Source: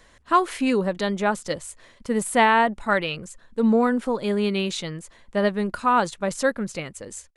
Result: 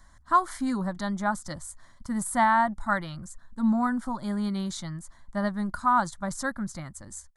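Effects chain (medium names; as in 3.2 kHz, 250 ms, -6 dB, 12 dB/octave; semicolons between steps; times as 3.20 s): bass shelf 110 Hz +7 dB; static phaser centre 1.1 kHz, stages 4; trim -2 dB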